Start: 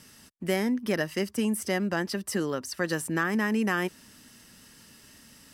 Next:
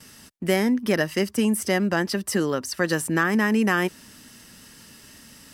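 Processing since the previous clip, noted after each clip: gate with hold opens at -46 dBFS; trim +5.5 dB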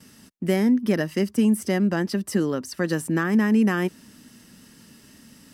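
peaking EQ 220 Hz +8.5 dB 1.9 oct; trim -5.5 dB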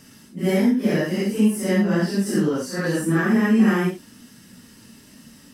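phase randomisation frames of 200 ms; trim +2.5 dB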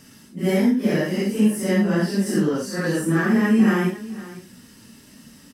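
delay 505 ms -17 dB

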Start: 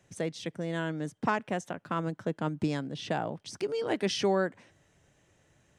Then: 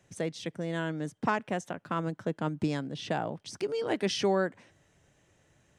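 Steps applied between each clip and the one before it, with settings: no audible change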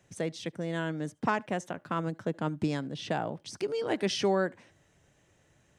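reverberation, pre-delay 70 ms, DRR 28 dB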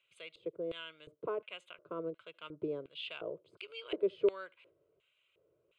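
LFO band-pass square 1.4 Hz 420–2700 Hz; static phaser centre 1.2 kHz, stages 8; trim +3 dB

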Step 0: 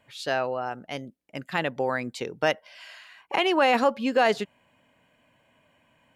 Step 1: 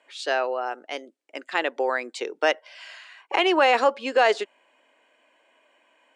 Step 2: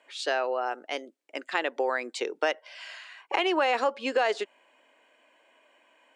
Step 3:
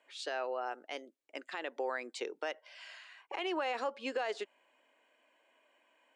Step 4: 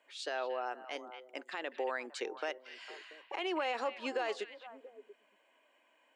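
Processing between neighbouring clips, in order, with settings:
elliptic band-pass 340–8600 Hz, stop band 40 dB; trim +3 dB
compression 2.5:1, threshold -24 dBFS, peak gain reduction 7 dB
peak limiter -18 dBFS, peak gain reduction 8 dB; trim -8 dB
repeats whose band climbs or falls 228 ms, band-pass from 2.6 kHz, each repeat -1.4 oct, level -8 dB

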